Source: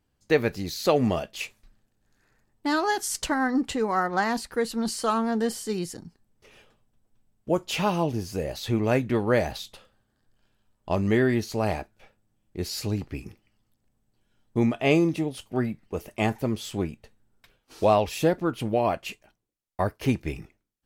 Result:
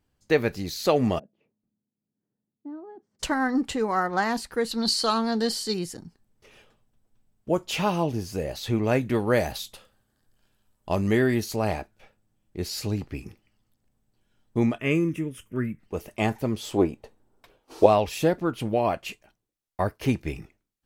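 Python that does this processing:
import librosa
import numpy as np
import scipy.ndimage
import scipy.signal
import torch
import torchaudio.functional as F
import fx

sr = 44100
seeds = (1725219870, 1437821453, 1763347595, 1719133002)

y = fx.ladder_bandpass(x, sr, hz=230.0, resonance_pct=40, at=(1.18, 3.19), fade=0.02)
y = fx.peak_eq(y, sr, hz=4300.0, db=15.0, octaves=0.54, at=(4.71, 5.74))
y = fx.peak_eq(y, sr, hz=13000.0, db=8.0, octaves=1.4, at=(9.01, 11.56))
y = fx.fixed_phaser(y, sr, hz=1800.0, stages=4, at=(14.78, 15.8))
y = fx.band_shelf(y, sr, hz=550.0, db=9.0, octaves=2.3, at=(16.63, 17.86))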